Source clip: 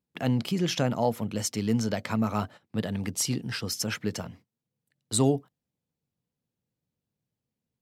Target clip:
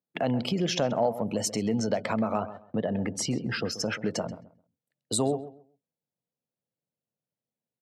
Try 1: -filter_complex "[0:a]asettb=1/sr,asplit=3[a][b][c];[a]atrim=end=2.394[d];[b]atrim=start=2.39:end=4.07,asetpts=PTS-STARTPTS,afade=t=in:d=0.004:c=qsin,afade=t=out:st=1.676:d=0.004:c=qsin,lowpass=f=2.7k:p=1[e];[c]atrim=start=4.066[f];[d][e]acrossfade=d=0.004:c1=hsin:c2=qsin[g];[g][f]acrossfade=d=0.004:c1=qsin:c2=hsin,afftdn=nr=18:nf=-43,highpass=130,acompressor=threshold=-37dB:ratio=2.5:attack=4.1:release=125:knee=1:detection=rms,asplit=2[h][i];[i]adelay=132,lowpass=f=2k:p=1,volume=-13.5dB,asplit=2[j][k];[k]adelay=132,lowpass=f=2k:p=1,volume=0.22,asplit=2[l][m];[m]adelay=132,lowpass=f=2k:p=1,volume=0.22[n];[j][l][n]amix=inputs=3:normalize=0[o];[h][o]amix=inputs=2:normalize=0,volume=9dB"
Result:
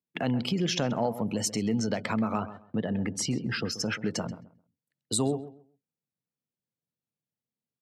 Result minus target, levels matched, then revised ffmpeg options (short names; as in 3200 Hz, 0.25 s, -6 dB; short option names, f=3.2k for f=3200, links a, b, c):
500 Hz band -3.0 dB
-filter_complex "[0:a]asettb=1/sr,asplit=3[a][b][c];[a]atrim=end=2.394[d];[b]atrim=start=2.39:end=4.07,asetpts=PTS-STARTPTS,afade=t=in:d=0.004:c=qsin,afade=t=out:st=1.676:d=0.004:c=qsin,lowpass=f=2.7k:p=1[e];[c]atrim=start=4.066[f];[d][e]acrossfade=d=0.004:c1=hsin:c2=qsin[g];[g][f]acrossfade=d=0.004:c1=qsin:c2=hsin,afftdn=nr=18:nf=-43,highpass=130,equalizer=f=620:t=o:w=0.9:g=9,acompressor=threshold=-37dB:ratio=2.5:attack=4.1:release=125:knee=1:detection=rms,asplit=2[h][i];[i]adelay=132,lowpass=f=2k:p=1,volume=-13.5dB,asplit=2[j][k];[k]adelay=132,lowpass=f=2k:p=1,volume=0.22,asplit=2[l][m];[m]adelay=132,lowpass=f=2k:p=1,volume=0.22[n];[j][l][n]amix=inputs=3:normalize=0[o];[h][o]amix=inputs=2:normalize=0,volume=9dB"